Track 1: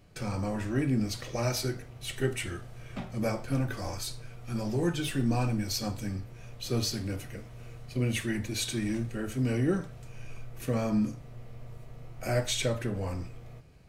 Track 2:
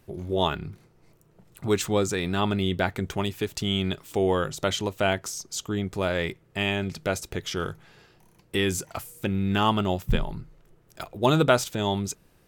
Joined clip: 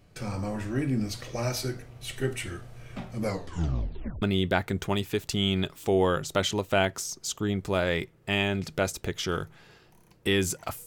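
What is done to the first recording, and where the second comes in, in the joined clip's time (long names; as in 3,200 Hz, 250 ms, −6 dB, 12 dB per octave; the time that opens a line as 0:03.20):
track 1
0:03.22: tape stop 1.00 s
0:04.22: continue with track 2 from 0:02.50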